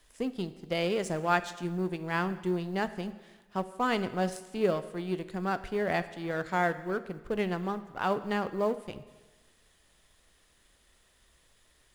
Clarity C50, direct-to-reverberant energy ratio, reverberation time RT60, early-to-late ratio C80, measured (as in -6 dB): 14.5 dB, 12.0 dB, 1.3 s, 16.0 dB